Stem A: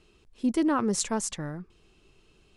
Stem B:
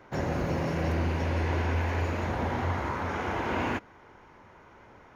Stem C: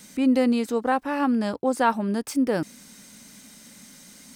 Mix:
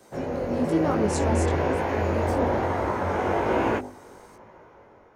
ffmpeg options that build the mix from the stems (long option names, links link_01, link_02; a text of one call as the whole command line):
ffmpeg -i stem1.wav -i stem2.wav -i stem3.wav -filter_complex "[0:a]adelay=150,volume=-2.5dB[link_01];[1:a]equalizer=frequency=3200:width=0.49:gain=-3.5,bandreject=frequency=50.47:width_type=h:width=4,bandreject=frequency=100.94:width_type=h:width=4,bandreject=frequency=151.41:width_type=h:width=4,bandreject=frequency=201.88:width_type=h:width=4,bandreject=frequency=252.35:width_type=h:width=4,bandreject=frequency=302.82:width_type=h:width=4,bandreject=frequency=353.29:width_type=h:width=4,bandreject=frequency=403.76:width_type=h:width=4,bandreject=frequency=454.23:width_type=h:width=4,bandreject=frequency=504.7:width_type=h:width=4,bandreject=frequency=555.17:width_type=h:width=4,bandreject=frequency=605.64:width_type=h:width=4,bandreject=frequency=656.11:width_type=h:width=4,bandreject=frequency=706.58:width_type=h:width=4,bandreject=frequency=757.05:width_type=h:width=4,bandreject=frequency=807.52:width_type=h:width=4,bandreject=frequency=857.99:width_type=h:width=4,bandreject=frequency=908.46:width_type=h:width=4,bandreject=frequency=958.93:width_type=h:width=4,bandreject=frequency=1009.4:width_type=h:width=4,dynaudnorm=framelen=240:gausssize=7:maxgain=7.5dB,volume=-1.5dB[link_02];[2:a]alimiter=limit=-19.5dB:level=0:latency=1,volume=-9.5dB[link_03];[link_01][link_02][link_03]amix=inputs=3:normalize=0,equalizer=frequency=520:width=0.98:gain=8.5,flanger=delay=18:depth=3.6:speed=1.1" out.wav